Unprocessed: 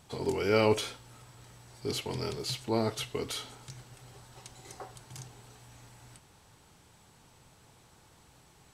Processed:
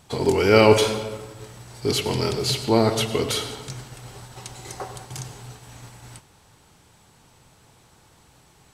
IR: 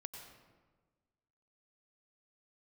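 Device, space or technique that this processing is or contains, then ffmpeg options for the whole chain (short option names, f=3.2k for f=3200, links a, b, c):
keyed gated reverb: -filter_complex "[0:a]asplit=3[a][b][c];[1:a]atrim=start_sample=2205[d];[b][d]afir=irnorm=-1:irlink=0[e];[c]apad=whole_len=385151[f];[e][f]sidechaingate=range=-33dB:threshold=-53dB:ratio=16:detection=peak,volume=6dB[g];[a][g]amix=inputs=2:normalize=0,volume=4.5dB"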